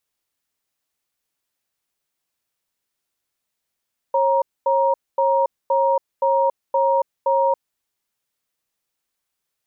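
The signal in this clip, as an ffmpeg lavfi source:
-f lavfi -i "aevalsrc='0.133*(sin(2*PI*544*t)+sin(2*PI*941*t))*clip(min(mod(t,0.52),0.28-mod(t,0.52))/0.005,0,1)':d=3.42:s=44100"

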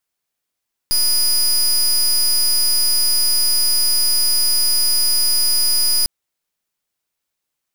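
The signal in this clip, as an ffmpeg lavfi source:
-f lavfi -i "aevalsrc='0.168*(2*lt(mod(4940*t,1),0.23)-1)':d=5.15:s=44100"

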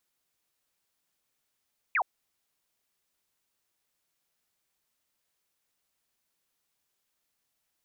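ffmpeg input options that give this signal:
-f lavfi -i "aevalsrc='0.0708*clip(t/0.002,0,1)*clip((0.07-t)/0.002,0,1)*sin(2*PI*2600*0.07/log(660/2600)*(exp(log(660/2600)*t/0.07)-1))':d=0.07:s=44100"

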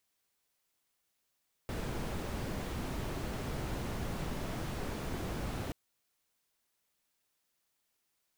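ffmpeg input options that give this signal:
-f lavfi -i "anoisesrc=c=brown:a=0.0661:d=4.03:r=44100:seed=1"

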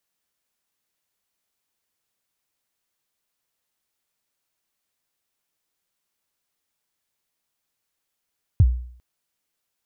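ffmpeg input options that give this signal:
-f lavfi -i "aevalsrc='0.398*pow(10,-3*t/0.57)*sin(2*PI*(120*0.048/log(61/120)*(exp(log(61/120)*min(t,0.048)/0.048)-1)+61*max(t-0.048,0)))':d=0.4:s=44100"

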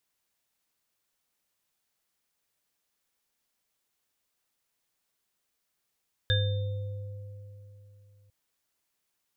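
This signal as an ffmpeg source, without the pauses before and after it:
-f lavfi -i "aevalsrc='0.075*pow(10,-3*t/3.34)*sin(2*PI*101*t)+0.0237*pow(10,-3*t/2.89)*sin(2*PI*512*t)+0.0398*pow(10,-3*t/0.36)*sin(2*PI*1660*t)+0.0531*pow(10,-3*t/0.76)*sin(2*PI*3600*t)':d=2:s=44100"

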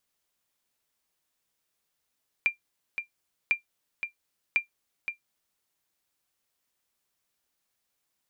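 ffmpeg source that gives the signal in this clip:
-f lavfi -i "aevalsrc='0.188*(sin(2*PI*2380*mod(t,1.05))*exp(-6.91*mod(t,1.05)/0.12)+0.376*sin(2*PI*2380*max(mod(t,1.05)-0.52,0))*exp(-6.91*max(mod(t,1.05)-0.52,0)/0.12))':d=3.15:s=44100"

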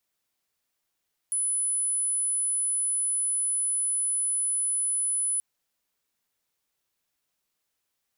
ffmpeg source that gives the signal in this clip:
-f lavfi -i "sine=f=10000:d=4.08:r=44100,volume=-5.94dB"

